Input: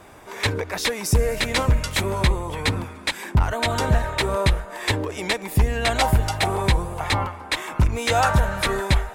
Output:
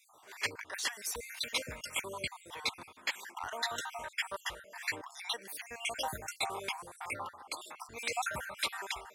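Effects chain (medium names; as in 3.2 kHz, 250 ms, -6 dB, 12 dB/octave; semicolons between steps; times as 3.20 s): random holes in the spectrogram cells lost 49%; high-pass 1.3 kHz 6 dB/octave; trim -7 dB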